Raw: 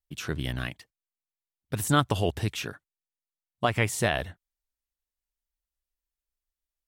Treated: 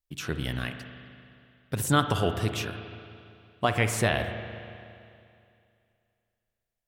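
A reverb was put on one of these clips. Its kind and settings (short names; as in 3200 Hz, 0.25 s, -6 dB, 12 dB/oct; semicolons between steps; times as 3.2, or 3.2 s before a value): spring tank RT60 2.5 s, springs 36/57 ms, chirp 30 ms, DRR 7 dB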